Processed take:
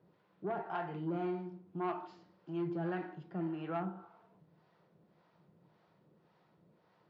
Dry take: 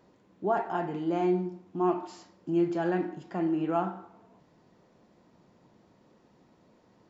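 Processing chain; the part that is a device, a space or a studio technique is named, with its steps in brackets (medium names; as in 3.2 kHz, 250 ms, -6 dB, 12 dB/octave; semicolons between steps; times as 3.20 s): guitar amplifier with harmonic tremolo (harmonic tremolo 1.8 Hz, depth 70%, crossover 510 Hz; saturation -25 dBFS, distortion -17 dB; cabinet simulation 88–4500 Hz, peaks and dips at 160 Hz +8 dB, 250 Hz -10 dB, 1.4 kHz +4 dB); trim -3.5 dB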